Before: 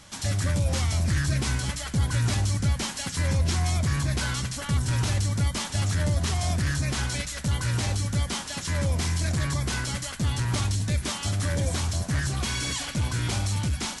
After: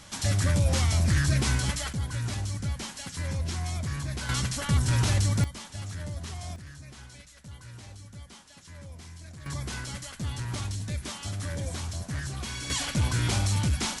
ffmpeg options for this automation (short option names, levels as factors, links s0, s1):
-af "asetnsamples=n=441:p=0,asendcmd='1.93 volume volume -7dB;4.29 volume volume 1dB;5.44 volume volume -11.5dB;6.56 volume volume -19dB;9.46 volume volume -7dB;12.7 volume volume 1dB',volume=1.12"